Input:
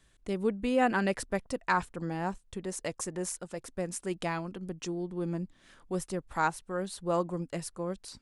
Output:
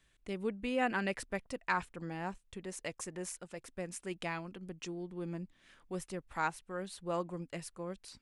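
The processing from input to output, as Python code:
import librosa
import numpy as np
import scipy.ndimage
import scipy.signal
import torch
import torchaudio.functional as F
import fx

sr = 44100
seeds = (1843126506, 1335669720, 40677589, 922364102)

y = fx.peak_eq(x, sr, hz=2400.0, db=6.5, octaves=1.1)
y = y * 10.0 ** (-7.0 / 20.0)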